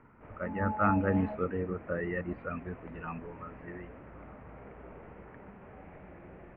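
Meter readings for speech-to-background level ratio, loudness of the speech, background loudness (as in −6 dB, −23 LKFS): 18.0 dB, −33.0 LKFS, −51.0 LKFS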